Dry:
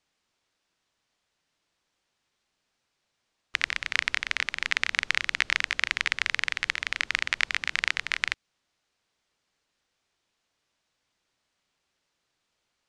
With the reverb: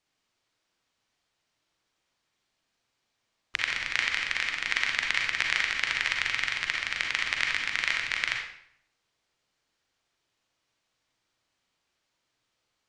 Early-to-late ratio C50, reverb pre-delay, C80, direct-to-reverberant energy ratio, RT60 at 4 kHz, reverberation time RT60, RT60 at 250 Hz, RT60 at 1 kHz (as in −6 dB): 2.5 dB, 37 ms, 6.5 dB, 0.5 dB, 0.55 s, 0.70 s, 0.80 s, 0.70 s